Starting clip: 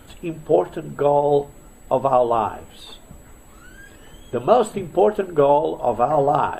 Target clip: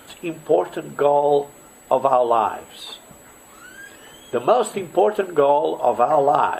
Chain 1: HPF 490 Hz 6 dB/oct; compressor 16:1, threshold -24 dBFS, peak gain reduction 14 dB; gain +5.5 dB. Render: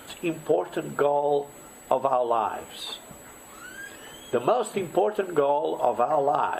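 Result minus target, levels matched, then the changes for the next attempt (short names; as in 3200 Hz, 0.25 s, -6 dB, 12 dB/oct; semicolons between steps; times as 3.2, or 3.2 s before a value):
compressor: peak gain reduction +7 dB
change: compressor 16:1, threshold -16.5 dBFS, peak gain reduction 7 dB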